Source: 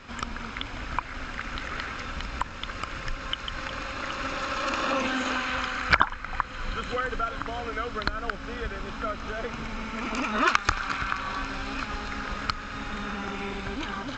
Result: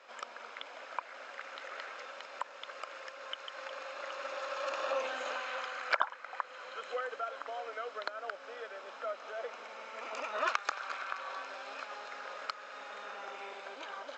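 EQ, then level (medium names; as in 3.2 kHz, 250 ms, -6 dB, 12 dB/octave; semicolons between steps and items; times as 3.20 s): ladder high-pass 490 Hz, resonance 55%; -1.0 dB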